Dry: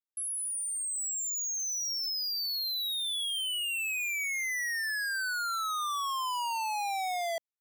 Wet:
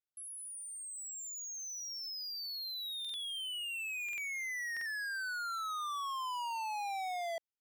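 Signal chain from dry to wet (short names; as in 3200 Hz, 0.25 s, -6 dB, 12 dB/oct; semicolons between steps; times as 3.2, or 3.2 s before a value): high shelf 4900 Hz -7.5 dB; stuck buffer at 3/4.04/4.72, samples 2048, times 2; gain -5 dB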